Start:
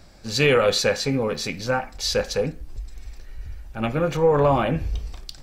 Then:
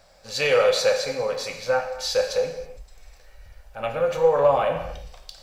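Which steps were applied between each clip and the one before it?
resonant low shelf 420 Hz -8.5 dB, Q 3; word length cut 12-bit, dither none; gated-style reverb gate 350 ms falling, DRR 4.5 dB; trim -4 dB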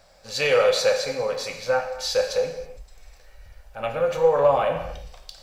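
no audible change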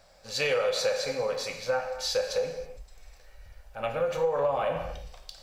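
compression, threshold -20 dBFS, peak gain reduction 7 dB; trim -3 dB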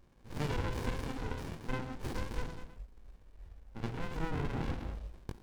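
chorus 0.38 Hz, delay 20 ms, depth 5.3 ms; sliding maximum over 65 samples; trim +1 dB

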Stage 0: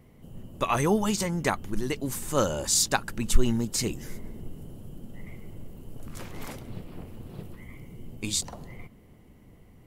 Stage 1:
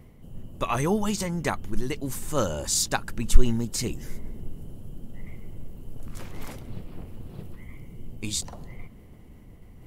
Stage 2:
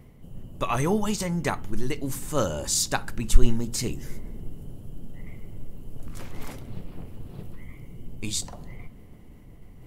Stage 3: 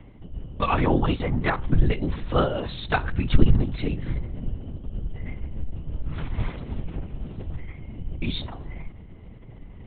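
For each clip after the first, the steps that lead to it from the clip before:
bass shelf 81 Hz +8 dB; reverse; upward compressor, threshold -39 dBFS; reverse; trim -1.5 dB
reverberation RT60 0.45 s, pre-delay 7 ms, DRR 15.5 dB
LPC vocoder at 8 kHz whisper; transformer saturation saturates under 45 Hz; trim +3 dB

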